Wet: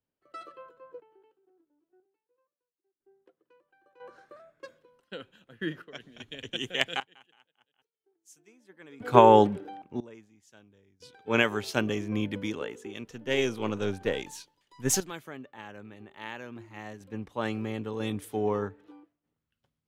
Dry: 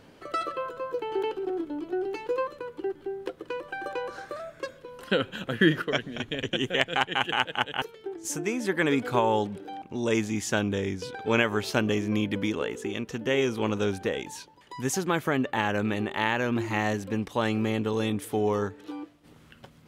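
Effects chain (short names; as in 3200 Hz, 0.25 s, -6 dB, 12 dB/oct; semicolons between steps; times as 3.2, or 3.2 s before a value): 13.04–15.11 half-wave gain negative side -3 dB; random-step tremolo 1 Hz, depth 95%; three-band expander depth 100%; gain -1 dB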